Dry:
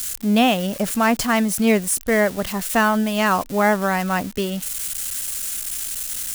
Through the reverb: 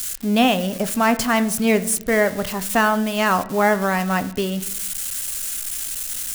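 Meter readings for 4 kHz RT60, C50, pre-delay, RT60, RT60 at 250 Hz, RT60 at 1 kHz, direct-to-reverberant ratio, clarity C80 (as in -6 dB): 0.55 s, 16.0 dB, 7 ms, 0.75 s, 1.0 s, 0.65 s, 10.5 dB, 19.0 dB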